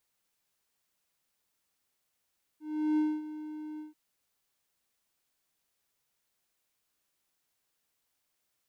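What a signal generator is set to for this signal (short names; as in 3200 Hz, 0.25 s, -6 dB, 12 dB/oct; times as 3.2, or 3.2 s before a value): ADSR triangle 306 Hz, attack 0.375 s, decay 0.24 s, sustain -14.5 dB, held 1.19 s, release 0.147 s -21.5 dBFS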